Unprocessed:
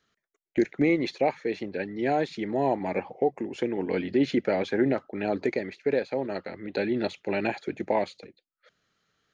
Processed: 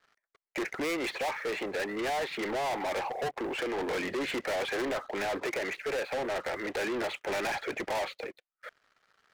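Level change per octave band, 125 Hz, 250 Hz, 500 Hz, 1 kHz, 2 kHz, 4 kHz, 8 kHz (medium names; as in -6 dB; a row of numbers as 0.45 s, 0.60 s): -12.5 dB, -9.5 dB, -5.5 dB, -1.5 dB, +2.0 dB, +3.5 dB, no reading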